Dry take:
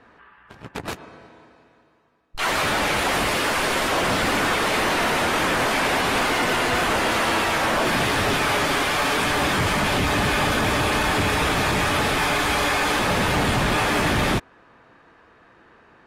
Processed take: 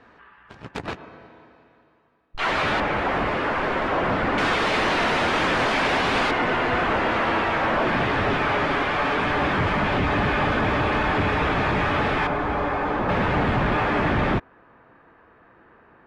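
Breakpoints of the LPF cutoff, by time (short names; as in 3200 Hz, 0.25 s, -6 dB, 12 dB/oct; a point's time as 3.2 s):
6600 Hz
from 0.86 s 3300 Hz
from 2.8 s 1800 Hz
from 4.38 s 4500 Hz
from 6.31 s 2300 Hz
from 12.27 s 1200 Hz
from 13.09 s 2000 Hz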